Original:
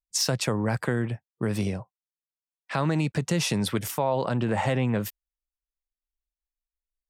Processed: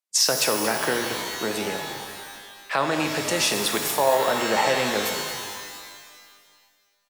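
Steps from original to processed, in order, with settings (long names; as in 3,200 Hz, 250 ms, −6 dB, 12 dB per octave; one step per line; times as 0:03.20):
high-pass filter 430 Hz 12 dB per octave
echo with shifted repeats 228 ms, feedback 38%, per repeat −52 Hz, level −13 dB
downsampling to 32,000 Hz
reverb with rising layers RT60 1.7 s, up +12 semitones, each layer −2 dB, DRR 5.5 dB
level +5.5 dB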